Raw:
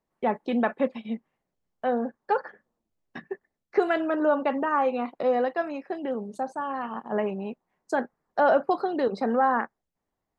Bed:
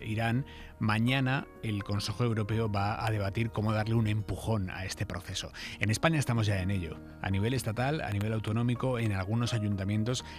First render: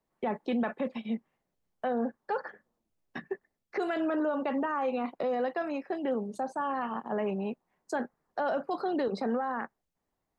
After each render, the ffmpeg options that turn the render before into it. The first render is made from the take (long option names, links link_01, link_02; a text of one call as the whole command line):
ffmpeg -i in.wav -filter_complex "[0:a]acrossover=split=200|3000[link_01][link_02][link_03];[link_02]acompressor=threshold=-23dB:ratio=6[link_04];[link_01][link_04][link_03]amix=inputs=3:normalize=0,alimiter=limit=-23dB:level=0:latency=1:release=14" out.wav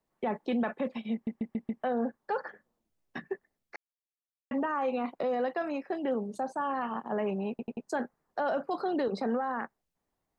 ffmpeg -i in.wav -filter_complex "[0:a]asplit=12[link_01][link_02][link_03][link_04][link_05][link_06][link_07][link_08][link_09][link_10][link_11][link_12];[link_01]atrim=end=1.272[link_13];[link_02]atrim=start=1.128:end=1.272[link_14];[link_03]atrim=start=1.128:end=1.272[link_15];[link_04]atrim=start=1.128:end=1.272[link_16];[link_05]atrim=start=1.128:end=1.272[link_17];[link_06]atrim=start=1.828:end=3.76,asetpts=PTS-STARTPTS,afade=type=out:start_time=1.928:duration=0.004:curve=hsin[link_18];[link_07]atrim=start=3.76:end=4.51,asetpts=PTS-STARTPTS,volume=0[link_19];[link_08]atrim=start=4.51:end=7.592,asetpts=PTS-STARTPTS,afade=type=in:duration=0.004:curve=hsin[link_20];[link_09]atrim=start=7.498:end=7.592[link_21];[link_10]atrim=start=7.498:end=7.592[link_22];[link_11]atrim=start=7.498:end=7.592[link_23];[link_12]atrim=start=7.858[link_24];[link_13][link_14]acrossfade=duration=0.004:curve1=hsin:curve2=hsin[link_25];[link_25][link_15]acrossfade=duration=0.004:curve1=hsin:curve2=hsin[link_26];[link_26][link_16]acrossfade=duration=0.004:curve1=hsin:curve2=hsin[link_27];[link_27][link_17]acrossfade=duration=0.004:curve1=hsin:curve2=hsin[link_28];[link_18][link_19][link_20]concat=n=3:v=0:a=1[link_29];[link_28][link_29]acrossfade=duration=0.004:curve1=hsin:curve2=hsin[link_30];[link_30][link_21]acrossfade=duration=0.004:curve1=hsin:curve2=hsin[link_31];[link_31][link_22]acrossfade=duration=0.004:curve1=hsin:curve2=hsin[link_32];[link_32][link_23]acrossfade=duration=0.004:curve1=hsin:curve2=hsin[link_33];[link_33][link_24]acrossfade=duration=0.004:curve1=hsin:curve2=hsin" out.wav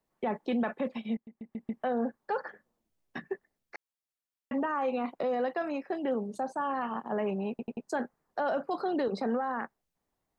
ffmpeg -i in.wav -filter_complex "[0:a]asplit=2[link_01][link_02];[link_01]atrim=end=1.17,asetpts=PTS-STARTPTS,afade=type=out:start_time=1.166:duration=0.004:curve=hsin:silence=0.141254[link_03];[link_02]atrim=start=1.17,asetpts=PTS-STARTPTS,afade=type=in:duration=0.57:curve=qua:silence=0.141254[link_04];[link_03][link_04]concat=n=2:v=0:a=1" out.wav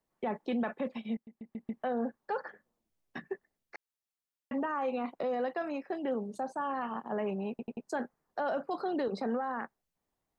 ffmpeg -i in.wav -af "volume=-2.5dB" out.wav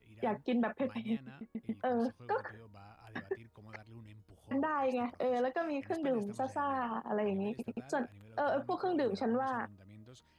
ffmpeg -i in.wav -i bed.wav -filter_complex "[1:a]volume=-24.5dB[link_01];[0:a][link_01]amix=inputs=2:normalize=0" out.wav